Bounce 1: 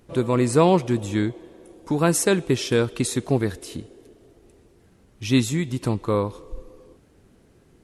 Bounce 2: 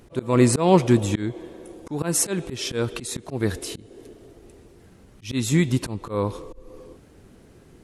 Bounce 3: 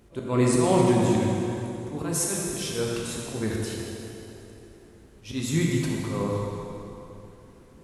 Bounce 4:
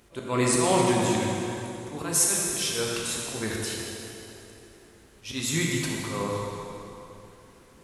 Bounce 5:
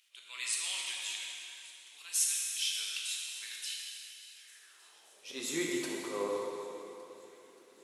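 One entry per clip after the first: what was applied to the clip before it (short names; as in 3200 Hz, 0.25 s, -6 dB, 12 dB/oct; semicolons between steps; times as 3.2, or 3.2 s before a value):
auto swell 0.244 s; gain +5.5 dB
plate-style reverb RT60 3 s, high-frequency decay 0.8×, DRR -3 dB; gain -7 dB
tilt shelf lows -5.5 dB, about 660 Hz
high-pass sweep 2900 Hz -> 380 Hz, 4.31–5.43; thin delay 0.58 s, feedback 67%, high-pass 1700 Hz, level -21.5 dB; gain -8.5 dB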